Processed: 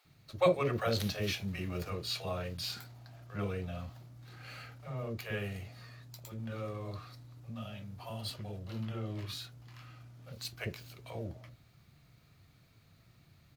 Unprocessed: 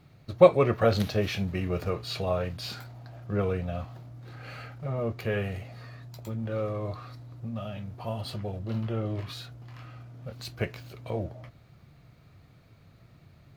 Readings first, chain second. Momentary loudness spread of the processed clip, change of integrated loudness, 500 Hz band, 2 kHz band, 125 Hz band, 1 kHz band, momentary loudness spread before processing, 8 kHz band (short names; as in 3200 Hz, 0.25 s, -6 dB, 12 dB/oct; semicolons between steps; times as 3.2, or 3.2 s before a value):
19 LU, -8.5 dB, -10.0 dB, -4.5 dB, -7.5 dB, -7.5 dB, 20 LU, +1.0 dB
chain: high shelf 2900 Hz +10 dB; bands offset in time highs, lows 50 ms, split 540 Hz; gain -7.5 dB